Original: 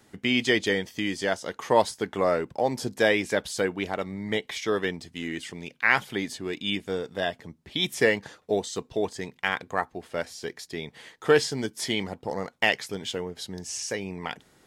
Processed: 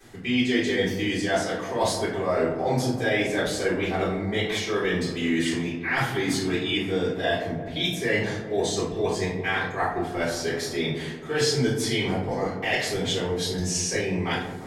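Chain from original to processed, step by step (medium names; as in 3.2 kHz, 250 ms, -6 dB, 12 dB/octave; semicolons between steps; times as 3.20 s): reverse; compression 6:1, threshold -32 dBFS, peak gain reduction 16.5 dB; reverse; feedback echo behind a low-pass 172 ms, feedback 65%, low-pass 1.2 kHz, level -10.5 dB; simulated room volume 81 m³, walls mixed, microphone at 3.6 m; trim -3 dB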